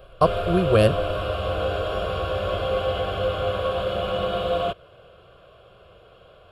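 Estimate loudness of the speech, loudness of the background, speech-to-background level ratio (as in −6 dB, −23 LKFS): −21.0 LKFS, −26.0 LKFS, 5.0 dB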